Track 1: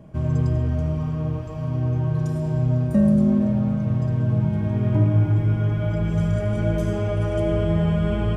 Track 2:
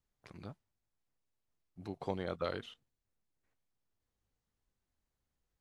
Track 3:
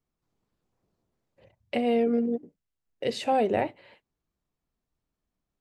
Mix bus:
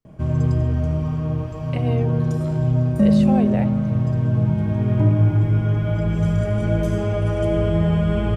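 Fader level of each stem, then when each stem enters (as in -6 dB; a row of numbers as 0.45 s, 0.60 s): +2.0 dB, -8.5 dB, -3.0 dB; 0.05 s, 0.00 s, 0.00 s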